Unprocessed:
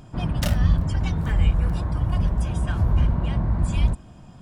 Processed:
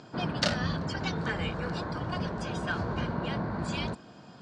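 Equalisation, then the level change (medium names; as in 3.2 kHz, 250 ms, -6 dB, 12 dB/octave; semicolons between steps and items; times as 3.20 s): cabinet simulation 220–6800 Hz, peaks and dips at 450 Hz +5 dB, 1.5 kHz +6 dB, 4.4 kHz +10 dB; 0.0 dB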